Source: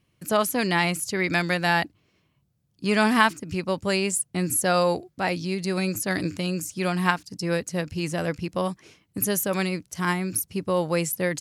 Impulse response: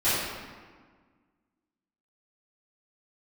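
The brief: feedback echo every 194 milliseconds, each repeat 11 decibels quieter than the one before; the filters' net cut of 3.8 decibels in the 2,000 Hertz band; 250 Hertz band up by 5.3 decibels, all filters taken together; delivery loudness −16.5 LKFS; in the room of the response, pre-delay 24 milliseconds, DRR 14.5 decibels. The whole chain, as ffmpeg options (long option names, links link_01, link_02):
-filter_complex "[0:a]equalizer=frequency=250:width_type=o:gain=8,equalizer=frequency=2000:width_type=o:gain=-5,aecho=1:1:194|388|582:0.282|0.0789|0.0221,asplit=2[link_01][link_02];[1:a]atrim=start_sample=2205,adelay=24[link_03];[link_02][link_03]afir=irnorm=-1:irlink=0,volume=-29.5dB[link_04];[link_01][link_04]amix=inputs=2:normalize=0,volume=6dB"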